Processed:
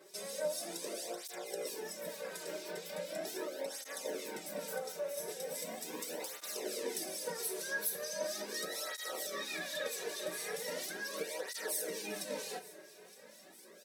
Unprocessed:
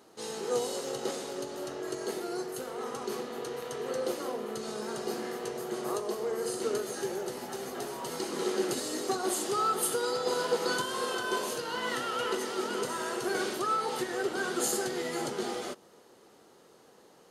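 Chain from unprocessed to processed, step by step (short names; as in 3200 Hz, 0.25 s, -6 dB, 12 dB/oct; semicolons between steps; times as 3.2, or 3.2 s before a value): Bessel high-pass 220 Hz, order 2; bell 850 Hz -12.5 dB 1.5 oct; comb 6.6 ms, depth 51%; compressor 2.5:1, threshold -43 dBFS, peak gain reduction 12 dB; harmonic tremolo 3.5 Hz, crossover 2200 Hz; varispeed +25%; thinning echo 0.916 s, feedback 68%, level -20.5 dB; on a send at -10 dB: reverb RT60 1.1 s, pre-delay 9 ms; on the sum: tape flanging out of phase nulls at 0.39 Hz, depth 4.2 ms; gain +9 dB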